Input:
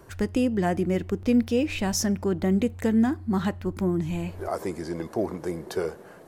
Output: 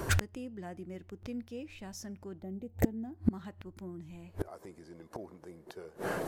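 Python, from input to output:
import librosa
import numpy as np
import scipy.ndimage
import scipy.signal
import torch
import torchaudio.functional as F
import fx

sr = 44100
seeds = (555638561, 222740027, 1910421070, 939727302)

y = fx.spec_box(x, sr, start_s=2.42, length_s=0.75, low_hz=920.0, high_hz=12000.0, gain_db=-11)
y = fx.gate_flip(y, sr, shuts_db=-26.0, range_db=-32)
y = F.gain(torch.from_numpy(y), 13.0).numpy()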